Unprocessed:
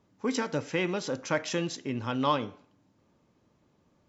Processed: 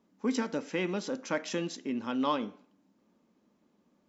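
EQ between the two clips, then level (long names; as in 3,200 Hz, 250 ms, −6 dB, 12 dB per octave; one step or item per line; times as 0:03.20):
low shelf with overshoot 160 Hz −8.5 dB, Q 3
−4.0 dB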